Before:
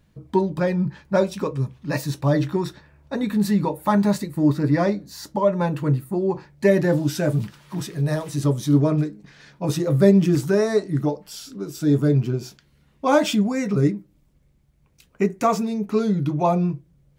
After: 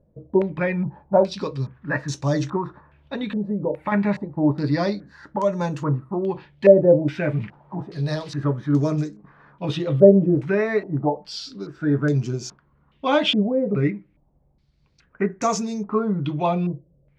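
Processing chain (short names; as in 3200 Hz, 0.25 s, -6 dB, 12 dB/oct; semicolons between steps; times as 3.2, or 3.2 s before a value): 2.57–3.92 compressor, threshold -21 dBFS, peak gain reduction 7 dB; stepped low-pass 2.4 Hz 560–6400 Hz; gain -2.5 dB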